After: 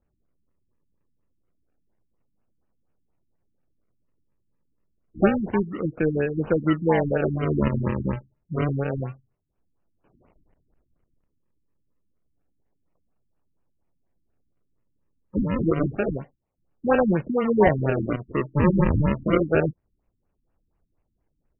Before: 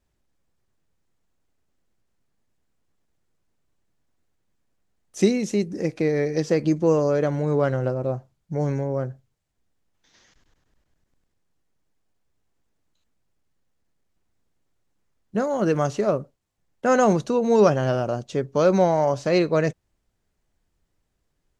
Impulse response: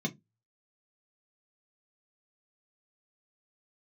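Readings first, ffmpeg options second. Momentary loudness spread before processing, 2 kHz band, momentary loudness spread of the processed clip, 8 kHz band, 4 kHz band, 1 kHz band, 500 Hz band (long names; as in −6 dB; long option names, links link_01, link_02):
9 LU, +1.5 dB, 10 LU, below −40 dB, −7.5 dB, −2.5 dB, −3.5 dB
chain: -af "acrusher=samples=41:mix=1:aa=0.000001:lfo=1:lforange=41:lforate=0.28,afftfilt=real='re*lt(b*sr/1024,310*pow(3100/310,0.5+0.5*sin(2*PI*4.2*pts/sr)))':imag='im*lt(b*sr/1024,310*pow(3100/310,0.5+0.5*sin(2*PI*4.2*pts/sr)))':win_size=1024:overlap=0.75"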